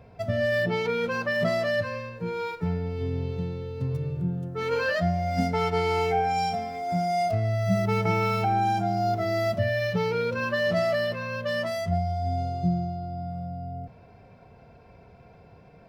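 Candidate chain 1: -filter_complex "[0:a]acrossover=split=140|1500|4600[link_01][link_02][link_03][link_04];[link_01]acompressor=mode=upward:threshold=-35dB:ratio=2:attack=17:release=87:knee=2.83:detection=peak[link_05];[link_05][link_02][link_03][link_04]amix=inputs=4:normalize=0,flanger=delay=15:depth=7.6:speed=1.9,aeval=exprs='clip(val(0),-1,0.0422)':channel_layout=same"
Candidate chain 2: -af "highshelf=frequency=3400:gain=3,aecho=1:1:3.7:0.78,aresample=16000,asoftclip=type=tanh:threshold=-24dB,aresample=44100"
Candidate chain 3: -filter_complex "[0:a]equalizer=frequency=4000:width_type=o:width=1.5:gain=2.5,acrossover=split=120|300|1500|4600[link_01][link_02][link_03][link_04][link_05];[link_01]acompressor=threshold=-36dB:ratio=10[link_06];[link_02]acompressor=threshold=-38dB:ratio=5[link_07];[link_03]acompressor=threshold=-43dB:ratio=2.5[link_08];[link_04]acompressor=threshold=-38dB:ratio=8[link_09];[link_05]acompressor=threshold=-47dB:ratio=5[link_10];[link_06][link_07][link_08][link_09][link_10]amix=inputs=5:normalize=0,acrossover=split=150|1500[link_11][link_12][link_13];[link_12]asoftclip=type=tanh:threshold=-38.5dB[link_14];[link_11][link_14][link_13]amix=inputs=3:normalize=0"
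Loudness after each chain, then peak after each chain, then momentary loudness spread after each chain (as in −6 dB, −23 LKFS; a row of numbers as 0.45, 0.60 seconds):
−30.5, −29.5, −35.5 LKFS; −14.5, −23.5, −24.0 dBFS; 11, 9, 16 LU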